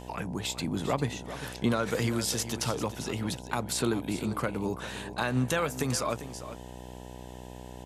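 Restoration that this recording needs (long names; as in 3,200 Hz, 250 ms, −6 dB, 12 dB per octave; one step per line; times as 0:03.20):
hum removal 62 Hz, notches 16
echo removal 399 ms −12.5 dB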